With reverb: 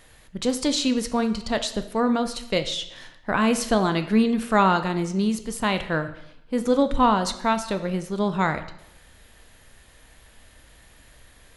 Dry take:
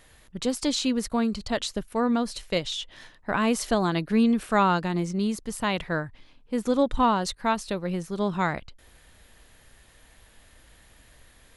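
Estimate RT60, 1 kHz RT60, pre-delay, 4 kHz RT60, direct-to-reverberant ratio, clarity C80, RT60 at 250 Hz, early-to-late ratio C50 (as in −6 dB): 0.80 s, 0.80 s, 6 ms, 0.75 s, 8.5 dB, 14.5 dB, 0.85 s, 12.0 dB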